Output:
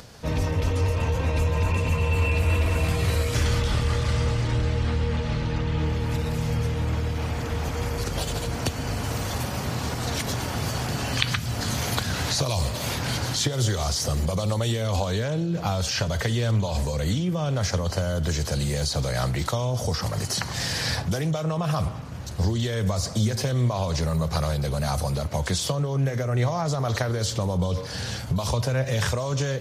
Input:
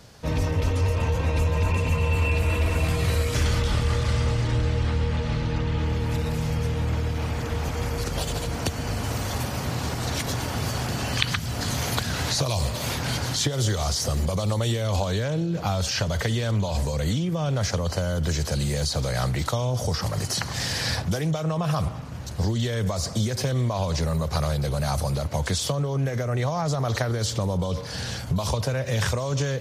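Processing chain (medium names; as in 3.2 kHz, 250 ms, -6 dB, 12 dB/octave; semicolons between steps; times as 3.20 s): upward compressor, threshold -40 dBFS; flange 0.2 Hz, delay 3.9 ms, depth 7.7 ms, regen +86%; trim +4.5 dB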